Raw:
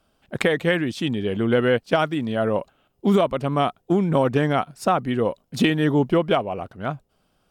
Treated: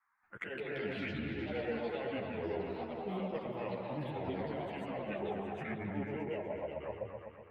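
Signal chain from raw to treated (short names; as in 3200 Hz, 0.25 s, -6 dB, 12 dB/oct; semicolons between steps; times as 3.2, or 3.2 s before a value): repeated pitch sweeps -7.5 st, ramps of 1.481 s; gate with hold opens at -56 dBFS; three-band isolator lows -17 dB, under 560 Hz, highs -17 dB, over 2300 Hz; reverse; compressor, threshold -33 dBFS, peak gain reduction 13 dB; reverse; band noise 870–2100 Hz -76 dBFS; envelope phaser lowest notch 520 Hz, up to 1200 Hz, full sweep at -35.5 dBFS; repeats that get brighter 0.124 s, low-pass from 750 Hz, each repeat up 1 oct, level 0 dB; echoes that change speed 0.248 s, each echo +4 st, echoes 2, each echo -6 dB; ensemble effect; gain +1 dB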